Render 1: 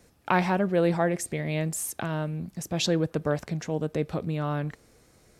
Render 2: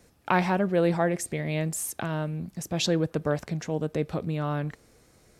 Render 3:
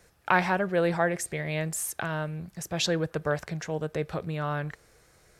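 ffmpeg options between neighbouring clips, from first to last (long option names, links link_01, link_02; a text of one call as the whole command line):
ffmpeg -i in.wav -af anull out.wav
ffmpeg -i in.wav -af "equalizer=frequency=100:width_type=o:width=0.67:gain=-3,equalizer=frequency=250:width_type=o:width=0.67:gain=-11,equalizer=frequency=1600:width_type=o:width=0.67:gain=5" out.wav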